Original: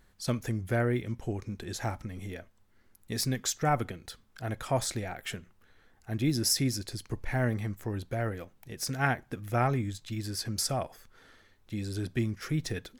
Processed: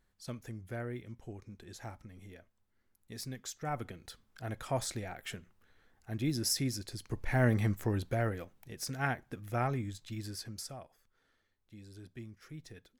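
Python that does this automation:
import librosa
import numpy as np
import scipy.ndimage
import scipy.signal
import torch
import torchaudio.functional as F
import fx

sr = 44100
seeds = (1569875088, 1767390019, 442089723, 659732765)

y = fx.gain(x, sr, db=fx.line((3.59, -12.0), (4.01, -5.0), (6.93, -5.0), (7.67, 4.0), (8.88, -5.5), (10.26, -5.5), (10.84, -17.0)))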